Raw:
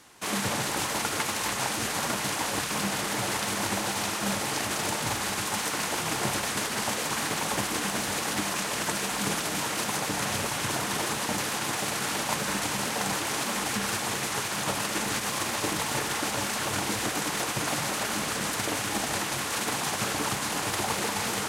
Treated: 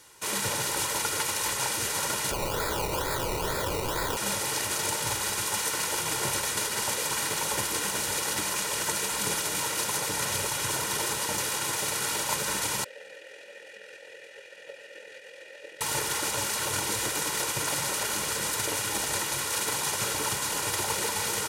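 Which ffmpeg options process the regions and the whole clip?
ffmpeg -i in.wav -filter_complex "[0:a]asettb=1/sr,asplit=3[link_01][link_02][link_03];[link_01]atrim=end=2.314[link_04];[link_02]atrim=start=2.31:end=4.17,asetpts=PTS-STARTPTS,afade=type=in:duration=0.004:curve=qsin,afade=type=out:start_time=1.856:duration=0.004:curve=qsin,tiltshelf=frequency=1200:gain=-7.5,acrusher=samples=21:mix=1:aa=0.000001:lfo=1:lforange=12.6:lforate=2.2,aeval=exprs='(mod(13.3*val(0)+1,2)-1)/13.3':channel_layout=same[link_05];[link_03]atrim=start=4.166[link_06];[link_04][link_05]acrossfade=duration=0.004:curve1=hsin:curve2=qsin[link_07];[link_07][link_06]acrossfade=duration=0.004:curve1=qsin:curve2=hsin,asettb=1/sr,asplit=3[link_08][link_09][link_10];[link_08]atrim=end=12.844[link_11];[link_09]atrim=start=12.84:end=15.81,asetpts=PTS-STARTPTS,afade=type=in:duration=0.004:curve=qsin,afade=type=out:start_time=2.966:duration=0.004:curve=qsin,asplit=3[link_12][link_13][link_14];[link_12]bandpass=frequency=530:width_type=q:width=8,volume=0dB[link_15];[link_13]bandpass=frequency=1840:width_type=q:width=8,volume=-6dB[link_16];[link_14]bandpass=frequency=2480:width_type=q:width=8,volume=-9dB[link_17];[link_15][link_16][link_17]amix=inputs=3:normalize=0,lowshelf=frequency=260:gain=-7,tremolo=f=42:d=0.4[link_18];[link_10]atrim=start=15.806[link_19];[link_11][link_18]acrossfade=duration=0.004:curve1=hsin:curve2=qsin[link_20];[link_20][link_19]acrossfade=duration=0.004:curve1=qsin:curve2=hsin,highshelf=frequency=5100:gain=7.5,aecho=1:1:2.1:0.55,volume=-3.5dB" out.wav

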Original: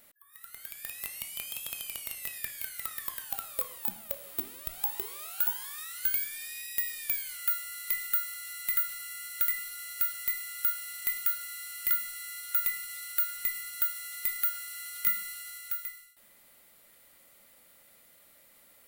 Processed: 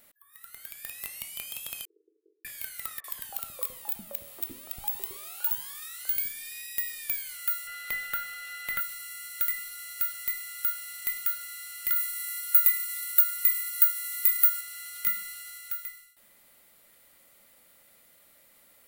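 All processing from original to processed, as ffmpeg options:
ffmpeg -i in.wav -filter_complex "[0:a]asettb=1/sr,asplit=3[link_01][link_02][link_03];[link_01]atrim=end=1.854[link_04];[link_02]atrim=start=1.85:end=2.45,asetpts=PTS-STARTPTS,afade=type=in:duration=0.004:curve=qsin,afade=type=out:start_time=0.596:duration=0.004:curve=qsin,asuperpass=centerf=380:order=12:qfactor=2.5,asplit=2[link_05][link_06];[link_06]adelay=41,volume=-4dB[link_07];[link_05][link_07]amix=inputs=2:normalize=0,atrim=end_sample=26460[link_08];[link_03]atrim=start=2.446[link_09];[link_04][link_08]acrossfade=duration=0.004:curve1=hsin:curve2=qsin[link_10];[link_10][link_09]acrossfade=duration=0.004:curve1=qsin:curve2=hsin,asettb=1/sr,asplit=3[link_11][link_12][link_13];[link_11]atrim=end=3.004[link_14];[link_12]atrim=start=3:end=6.52,asetpts=PTS-STARTPTS,afade=type=in:duration=0.004:curve=qsin,afade=type=out:start_time=3.516:duration=0.004:curve=qsin,bandreject=frequency=1500:width=21,acrossover=split=400|1400[link_15][link_16][link_17];[link_17]adelay=40[link_18];[link_15]adelay=110[link_19];[link_19][link_16][link_18]amix=inputs=3:normalize=0,atrim=end_sample=155232[link_20];[link_13]atrim=start=6.516[link_21];[link_14][link_20]acrossfade=duration=0.004:curve1=hsin:curve2=qsin[link_22];[link_22][link_21]acrossfade=duration=0.004:curve1=qsin:curve2=hsin,asettb=1/sr,asplit=3[link_23][link_24][link_25];[link_23]atrim=end=7.674[link_26];[link_24]atrim=start=7.67:end=8.81,asetpts=PTS-STARTPTS,afade=type=in:duration=0.004:curve=qsin,afade=type=out:start_time=1.136:duration=0.004:curve=qsin,bass=frequency=250:gain=-2,treble=frequency=4000:gain=-13,bandreject=frequency=50:width_type=h:width=6,bandreject=frequency=100:width_type=h:width=6,bandreject=frequency=150:width_type=h:width=6,bandreject=frequency=200:width_type=h:width=6,bandreject=frequency=250:width_type=h:width=6,bandreject=frequency=300:width_type=h:width=6,bandreject=frequency=350:width_type=h:width=6,acontrast=82[link_27];[link_25]atrim=start=8.806[link_28];[link_26][link_27]acrossfade=duration=0.004:curve1=hsin:curve2=qsin[link_29];[link_29][link_28]acrossfade=duration=0.004:curve1=qsin:curve2=hsin,asettb=1/sr,asplit=3[link_30][link_31][link_32];[link_30]atrim=end=11.964[link_33];[link_31]atrim=start=11.96:end=14.61,asetpts=PTS-STARTPTS,afade=type=in:duration=0.004:curve=qsin,afade=type=out:start_time=2.646:duration=0.004:curve=qsin,highshelf=frequency=9800:gain=10.5,asplit=2[link_34][link_35];[link_35]adelay=22,volume=-11dB[link_36];[link_34][link_36]amix=inputs=2:normalize=0,atrim=end_sample=116865[link_37];[link_32]atrim=start=14.606[link_38];[link_33][link_37]acrossfade=duration=0.004:curve1=hsin:curve2=qsin[link_39];[link_39][link_38]acrossfade=duration=0.004:curve1=qsin:curve2=hsin" out.wav

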